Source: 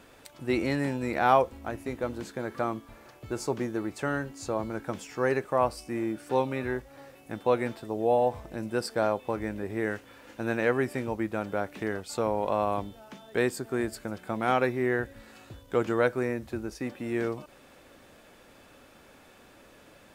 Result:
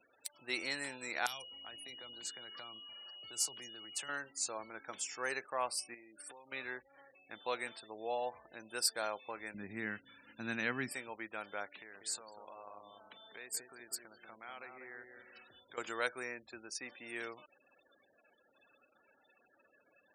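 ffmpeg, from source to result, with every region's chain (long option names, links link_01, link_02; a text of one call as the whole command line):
ffmpeg -i in.wav -filter_complex "[0:a]asettb=1/sr,asplit=3[link_01][link_02][link_03];[link_01]atrim=end=1.264[link_04];[link_02]atrim=start=1.26:end=4.09,asetpts=PTS-STARTPTS,afade=type=in:duration=0.004:curve=qsin,afade=type=out:start_time=2.826:duration=0.004:curve=qsin,acrossover=split=160|3000[link_05][link_06][link_07];[link_06]acompressor=threshold=-37dB:ratio=8:attack=3.2:release=140:knee=2.83:detection=peak[link_08];[link_05][link_08][link_07]amix=inputs=3:normalize=0,aeval=exprs='(mod(15.8*val(0)+1,2)-1)/15.8':channel_layout=same,aeval=exprs='val(0)+0.00355*sin(2*PI*2900*n/s)':channel_layout=same[link_09];[link_03]atrim=start=4.086[link_10];[link_04][link_09]acrossfade=duration=0.004:curve1=hsin:curve2=qsin[link_11];[link_11][link_10]acrossfade=duration=0.004:curve1=qsin:curve2=hsin,asettb=1/sr,asplit=3[link_12][link_13][link_14];[link_12]atrim=end=5.944[link_15];[link_13]atrim=start=5.94:end=6.52,asetpts=PTS-STARTPTS,afade=type=in:duration=0.004:curve=qsin,afade=type=out:start_time=0.576:duration=0.004:curve=qsin,highpass=frequency=98:poles=1,acompressor=threshold=-37dB:ratio=12:attack=3.2:release=140:knee=1:detection=peak[link_16];[link_14]atrim=start=6.516[link_17];[link_15][link_16]acrossfade=duration=0.004:curve1=hsin:curve2=qsin[link_18];[link_18][link_17]acrossfade=duration=0.004:curve1=qsin:curve2=hsin,asettb=1/sr,asplit=3[link_19][link_20][link_21];[link_19]atrim=end=9.544[link_22];[link_20]atrim=start=9.54:end=10.92,asetpts=PTS-STARTPTS,afade=type=in:duration=0.004:curve=qsin,afade=type=out:start_time=1.376:duration=0.004:curve=qsin,lowpass=8500,lowshelf=frequency=310:width_type=q:width=1.5:gain=13[link_23];[link_21]atrim=start=10.916[link_24];[link_22][link_23]acrossfade=duration=0.004:curve1=hsin:curve2=qsin[link_25];[link_25][link_24]acrossfade=duration=0.004:curve1=qsin:curve2=hsin,asettb=1/sr,asplit=3[link_26][link_27][link_28];[link_26]atrim=end=11.704[link_29];[link_27]atrim=start=11.7:end=15.78,asetpts=PTS-STARTPTS,afade=type=in:duration=0.004:curve=qsin,afade=type=out:start_time=4.076:duration=0.004:curve=qsin,acompressor=threshold=-42dB:ratio=2.5:attack=3.2:release=140:knee=1:detection=peak,asplit=2[link_30][link_31];[link_31]adelay=194,lowpass=frequency=1600:poles=1,volume=-4dB,asplit=2[link_32][link_33];[link_33]adelay=194,lowpass=frequency=1600:poles=1,volume=0.4,asplit=2[link_34][link_35];[link_35]adelay=194,lowpass=frequency=1600:poles=1,volume=0.4,asplit=2[link_36][link_37];[link_37]adelay=194,lowpass=frequency=1600:poles=1,volume=0.4,asplit=2[link_38][link_39];[link_39]adelay=194,lowpass=frequency=1600:poles=1,volume=0.4[link_40];[link_30][link_32][link_34][link_36][link_38][link_40]amix=inputs=6:normalize=0,atrim=end_sample=179928[link_41];[link_28]atrim=start=15.776[link_42];[link_29][link_41]acrossfade=duration=0.004:curve1=hsin:curve2=qsin[link_43];[link_43][link_42]acrossfade=duration=0.004:curve1=qsin:curve2=hsin,afftfilt=real='re*gte(hypot(re,im),0.00398)':imag='im*gte(hypot(re,im),0.00398)':win_size=1024:overlap=0.75,aderivative,volume=7.5dB" out.wav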